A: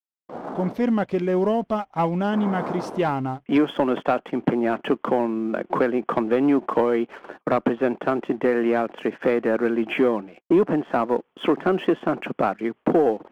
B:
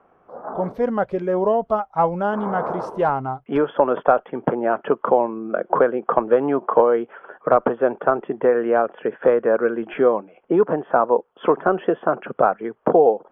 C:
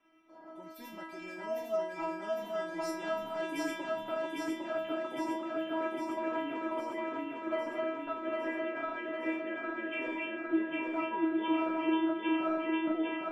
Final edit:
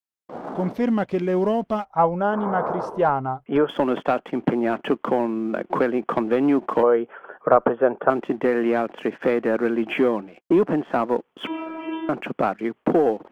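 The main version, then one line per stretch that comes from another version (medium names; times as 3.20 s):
A
1.85–3.69 s: from B
6.83–8.10 s: from B
11.47–12.09 s: from C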